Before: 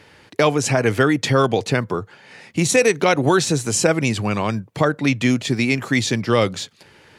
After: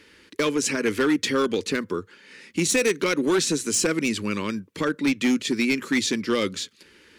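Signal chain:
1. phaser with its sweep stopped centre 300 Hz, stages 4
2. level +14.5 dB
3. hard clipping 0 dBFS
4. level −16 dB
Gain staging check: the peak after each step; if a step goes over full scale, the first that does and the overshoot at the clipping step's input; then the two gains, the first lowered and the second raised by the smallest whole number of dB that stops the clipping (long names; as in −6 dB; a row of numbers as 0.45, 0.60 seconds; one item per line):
−6.5, +8.0, 0.0, −16.0 dBFS
step 2, 8.0 dB
step 2 +6.5 dB, step 4 −8 dB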